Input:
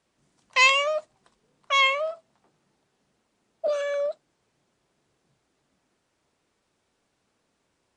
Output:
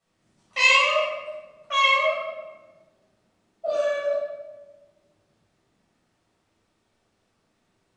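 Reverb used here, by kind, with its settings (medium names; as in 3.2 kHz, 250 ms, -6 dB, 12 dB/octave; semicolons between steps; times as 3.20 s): simulated room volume 700 m³, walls mixed, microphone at 6.6 m; trim -10.5 dB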